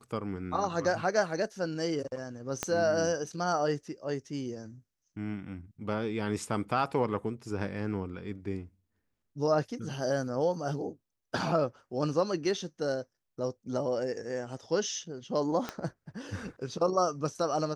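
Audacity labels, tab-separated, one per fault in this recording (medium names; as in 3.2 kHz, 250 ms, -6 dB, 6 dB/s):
2.630000	2.630000	pop -14 dBFS
15.690000	15.690000	pop -19 dBFS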